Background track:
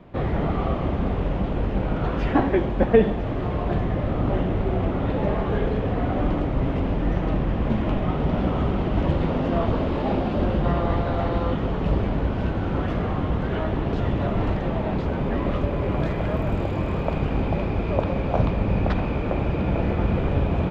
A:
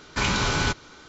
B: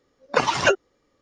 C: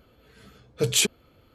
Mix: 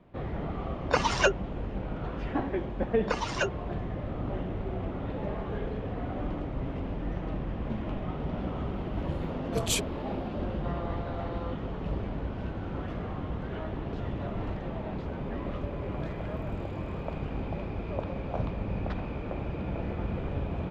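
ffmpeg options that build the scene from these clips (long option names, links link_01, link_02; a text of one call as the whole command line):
ffmpeg -i bed.wav -i cue0.wav -i cue1.wav -i cue2.wav -filter_complex "[2:a]asplit=2[link_01][link_02];[0:a]volume=-10.5dB[link_03];[link_01]atrim=end=1.21,asetpts=PTS-STARTPTS,volume=-5.5dB,afade=type=in:duration=0.004:curve=hsin,afade=type=out:start_time=1.206:duration=0.004:curve=hsin,adelay=570[link_04];[link_02]atrim=end=1.21,asetpts=PTS-STARTPTS,volume=-11dB,afade=type=in:duration=0.004:curve=hsin,afade=type=out:start_time=1.206:duration=0.004:curve=hsin,adelay=2740[link_05];[3:a]atrim=end=1.54,asetpts=PTS-STARTPTS,volume=-8dB,afade=type=in:duration=0.004:curve=hsin,afade=type=out:start_time=1.536:duration=0.004:curve=hsin,adelay=385434S[link_06];[link_03][link_04][link_05][link_06]amix=inputs=4:normalize=0" out.wav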